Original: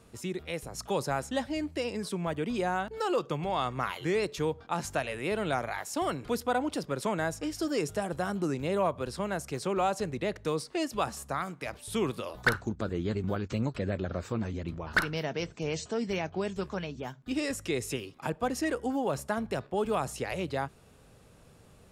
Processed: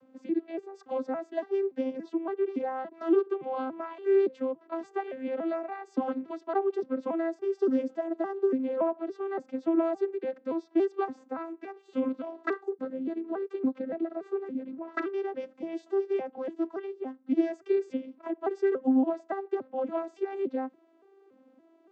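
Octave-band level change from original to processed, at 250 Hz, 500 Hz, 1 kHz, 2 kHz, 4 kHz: +3.5 dB, +3.0 dB, -3.5 dB, -10.0 dB, under -15 dB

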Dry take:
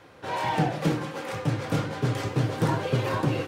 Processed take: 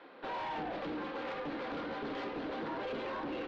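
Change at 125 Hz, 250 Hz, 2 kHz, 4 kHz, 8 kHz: -28.0 dB, -11.5 dB, -8.5 dB, -10.5 dB, under -25 dB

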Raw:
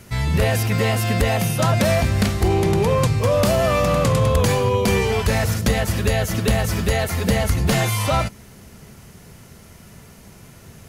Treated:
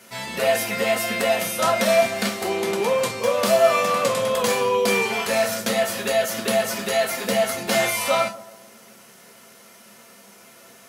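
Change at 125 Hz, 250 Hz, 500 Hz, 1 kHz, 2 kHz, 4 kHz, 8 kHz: -20.5, -7.0, +0.5, +1.0, +1.0, +1.0, +1.0 dB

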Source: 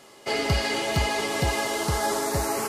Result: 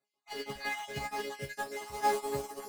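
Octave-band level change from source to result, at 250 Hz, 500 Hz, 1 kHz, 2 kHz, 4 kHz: -15.5, -10.0, -6.5, -10.5, -14.5 dB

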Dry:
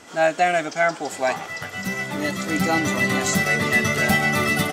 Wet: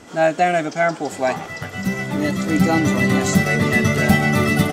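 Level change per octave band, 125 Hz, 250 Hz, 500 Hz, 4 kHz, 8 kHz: +8.0, +7.0, +3.0, -1.0, -1.0 dB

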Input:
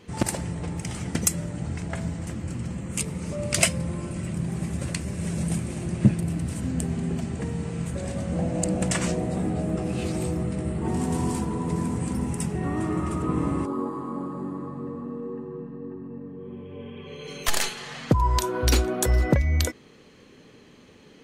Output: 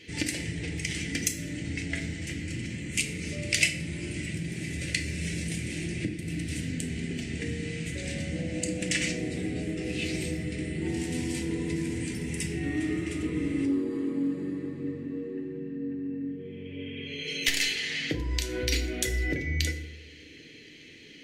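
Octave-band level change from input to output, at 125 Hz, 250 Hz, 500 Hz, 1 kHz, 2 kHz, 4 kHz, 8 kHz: -7.0, -3.5, -5.5, -18.5, +3.5, +2.0, -3.5 dB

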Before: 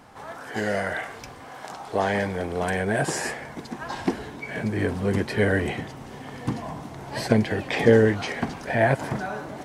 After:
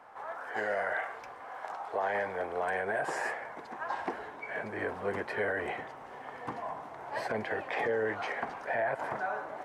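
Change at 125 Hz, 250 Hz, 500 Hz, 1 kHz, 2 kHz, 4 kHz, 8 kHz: -22.5, -18.0, -9.5, -3.5, -5.5, -14.0, -17.0 dB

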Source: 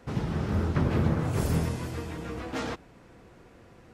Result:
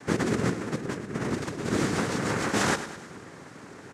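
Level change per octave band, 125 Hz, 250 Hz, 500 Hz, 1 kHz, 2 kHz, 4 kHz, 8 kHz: -4.5, +2.5, +4.5, +5.5, +9.0, +8.0, +10.5 dB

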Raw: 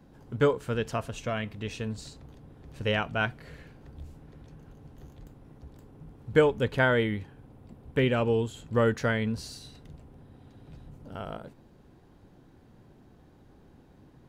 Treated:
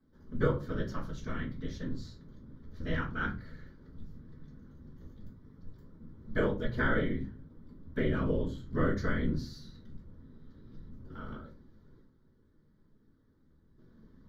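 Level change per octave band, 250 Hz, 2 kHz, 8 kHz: -2.5 dB, -6.0 dB, under -10 dB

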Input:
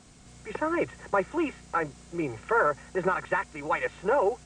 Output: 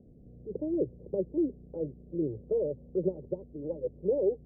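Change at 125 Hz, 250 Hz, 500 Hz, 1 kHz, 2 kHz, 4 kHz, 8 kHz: 0.0 dB, 0.0 dB, -2.0 dB, under -30 dB, under -40 dB, under -35 dB, under -30 dB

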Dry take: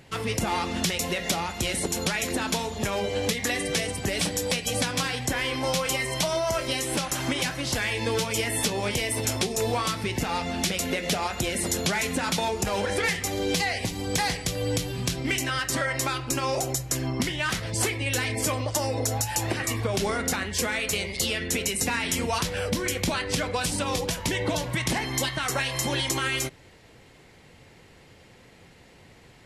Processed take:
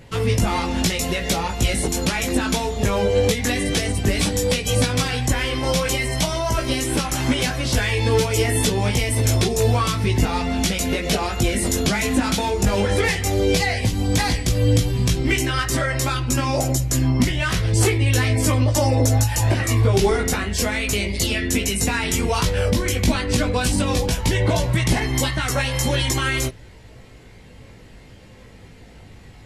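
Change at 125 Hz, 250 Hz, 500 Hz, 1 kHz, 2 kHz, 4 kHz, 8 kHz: +12.0, +8.0, +6.5, +4.0, +4.0, +3.5, +3.5 dB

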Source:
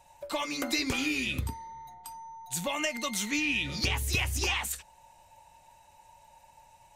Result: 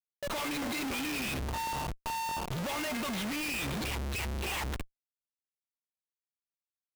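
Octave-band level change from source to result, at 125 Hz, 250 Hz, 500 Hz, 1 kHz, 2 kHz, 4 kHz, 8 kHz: -2.0, -1.5, -1.5, +2.5, -4.5, -5.0, -6.0 dB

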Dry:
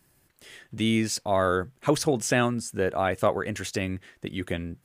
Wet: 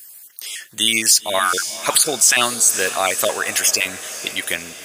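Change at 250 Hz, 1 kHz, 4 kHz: -5.0, +6.0, +16.5 dB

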